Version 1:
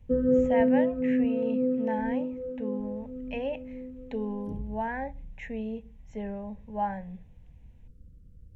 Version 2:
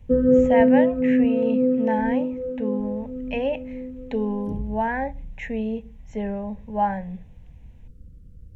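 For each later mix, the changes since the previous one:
speech +7.5 dB; background +6.5 dB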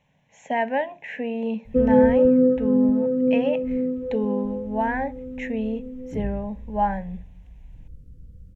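background: entry +1.65 s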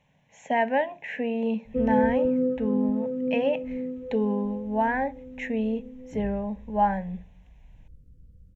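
background -7.5 dB

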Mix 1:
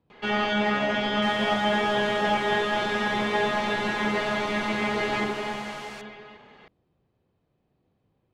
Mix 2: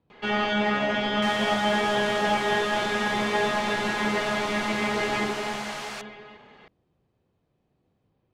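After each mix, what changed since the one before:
second sound +7.5 dB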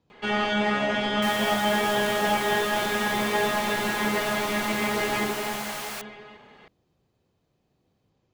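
speech: remove air absorption 230 m; master: remove LPF 6400 Hz 12 dB/oct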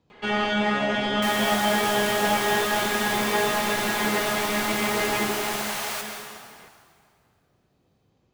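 reverb: on, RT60 2.3 s

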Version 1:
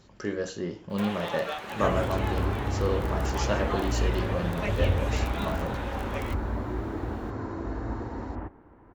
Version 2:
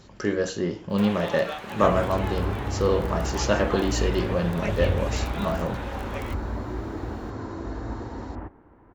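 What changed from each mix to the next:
speech +6.0 dB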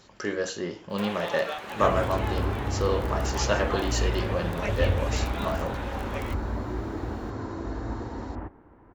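speech: add low shelf 350 Hz -10.5 dB

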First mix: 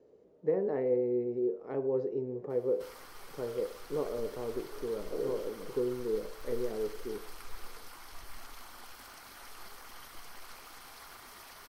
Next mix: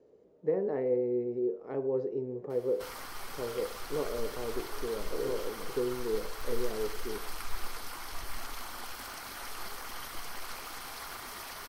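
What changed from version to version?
background +8.0 dB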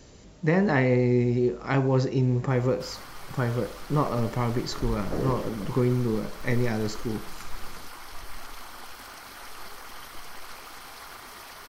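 speech: remove band-pass 450 Hz, Q 4.5; master: add high shelf 7200 Hz -4 dB

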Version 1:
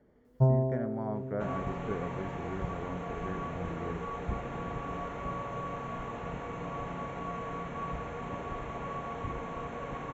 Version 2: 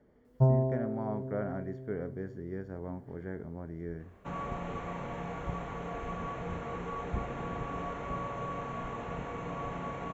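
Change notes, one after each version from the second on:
second sound: entry +2.85 s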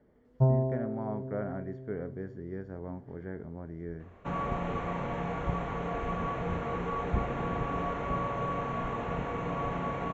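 second sound +5.0 dB; master: add air absorption 81 m

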